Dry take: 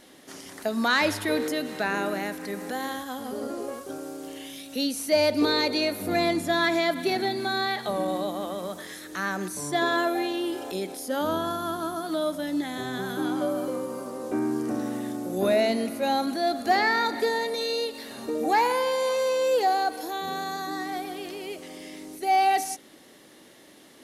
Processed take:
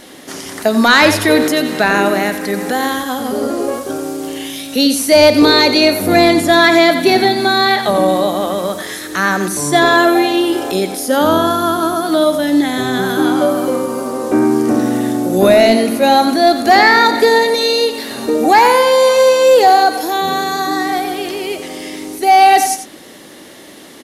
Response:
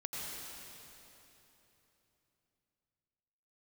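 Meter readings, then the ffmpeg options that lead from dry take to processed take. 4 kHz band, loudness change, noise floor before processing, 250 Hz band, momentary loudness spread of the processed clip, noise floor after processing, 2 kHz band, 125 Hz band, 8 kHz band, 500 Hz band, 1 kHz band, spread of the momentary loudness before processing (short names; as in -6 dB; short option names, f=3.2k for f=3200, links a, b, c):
+14.5 dB, +14.5 dB, -52 dBFS, +14.5 dB, 12 LU, -37 dBFS, +14.5 dB, +14.0 dB, +15.0 dB, +14.5 dB, +14.0 dB, 13 LU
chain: -af "aecho=1:1:90:0.299,apsyclip=16.5dB,volume=-2dB"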